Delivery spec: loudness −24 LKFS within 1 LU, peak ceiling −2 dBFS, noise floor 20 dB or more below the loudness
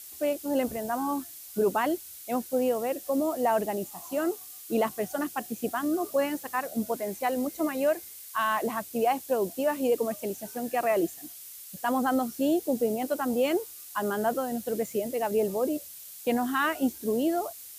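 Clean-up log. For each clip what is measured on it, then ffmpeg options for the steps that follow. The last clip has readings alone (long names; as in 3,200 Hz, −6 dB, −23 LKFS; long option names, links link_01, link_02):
background noise floor −45 dBFS; target noise floor −49 dBFS; integrated loudness −29.0 LKFS; sample peak −16.0 dBFS; target loudness −24.0 LKFS
→ -af "afftdn=noise_reduction=6:noise_floor=-45"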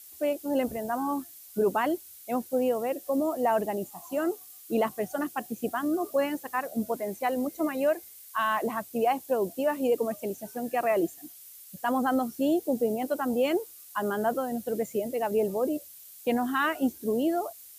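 background noise floor −49 dBFS; integrated loudness −29.0 LKFS; sample peak −16.5 dBFS; target loudness −24.0 LKFS
→ -af "volume=5dB"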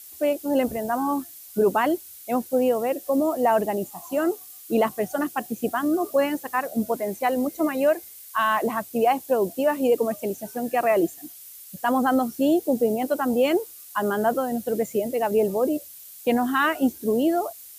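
integrated loudness −24.0 LKFS; sample peak −11.5 dBFS; background noise floor −44 dBFS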